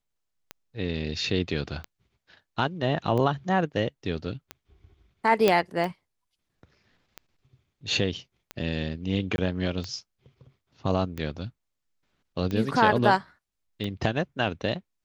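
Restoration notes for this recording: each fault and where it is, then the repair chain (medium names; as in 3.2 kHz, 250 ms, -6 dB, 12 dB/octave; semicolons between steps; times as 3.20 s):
tick 45 rpm -19 dBFS
5.48 s: pop -7 dBFS
9.36–9.38 s: dropout 21 ms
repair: de-click; interpolate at 9.36 s, 21 ms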